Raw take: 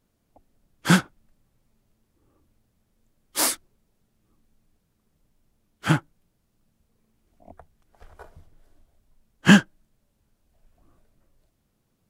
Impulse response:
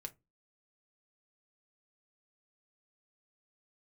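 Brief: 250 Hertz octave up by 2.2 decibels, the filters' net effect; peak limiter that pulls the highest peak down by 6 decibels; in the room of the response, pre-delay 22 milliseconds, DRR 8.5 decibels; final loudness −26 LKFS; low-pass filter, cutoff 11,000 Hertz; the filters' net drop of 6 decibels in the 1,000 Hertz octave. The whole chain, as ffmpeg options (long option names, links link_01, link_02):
-filter_complex "[0:a]lowpass=11000,equalizer=frequency=250:width_type=o:gain=3.5,equalizer=frequency=1000:width_type=o:gain=-8.5,alimiter=limit=-7dB:level=0:latency=1,asplit=2[link_01][link_02];[1:a]atrim=start_sample=2205,adelay=22[link_03];[link_02][link_03]afir=irnorm=-1:irlink=0,volume=-4.5dB[link_04];[link_01][link_04]amix=inputs=2:normalize=0,volume=-2.5dB"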